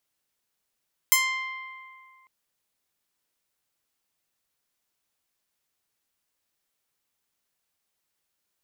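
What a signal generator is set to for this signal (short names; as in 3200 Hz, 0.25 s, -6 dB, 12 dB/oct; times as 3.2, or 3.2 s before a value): plucked string C6, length 1.15 s, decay 2.29 s, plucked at 0.23, bright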